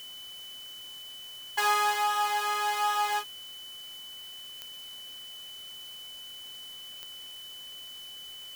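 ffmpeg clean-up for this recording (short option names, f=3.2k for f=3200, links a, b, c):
-af "adeclick=t=4,bandreject=f=3k:w=30,afwtdn=0.0025"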